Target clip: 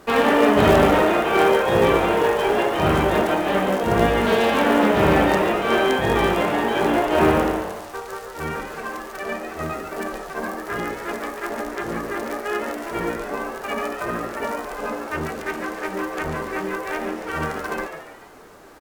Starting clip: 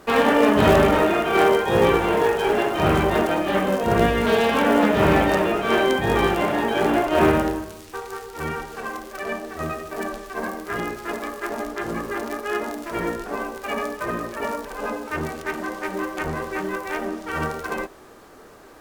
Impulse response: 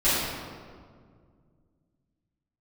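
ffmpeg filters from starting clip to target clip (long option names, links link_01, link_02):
-filter_complex "[0:a]asplit=6[link_01][link_02][link_03][link_04][link_05][link_06];[link_02]adelay=142,afreqshift=130,volume=-8.5dB[link_07];[link_03]adelay=284,afreqshift=260,volume=-15.2dB[link_08];[link_04]adelay=426,afreqshift=390,volume=-22dB[link_09];[link_05]adelay=568,afreqshift=520,volume=-28.7dB[link_10];[link_06]adelay=710,afreqshift=650,volume=-35.5dB[link_11];[link_01][link_07][link_08][link_09][link_10][link_11]amix=inputs=6:normalize=0"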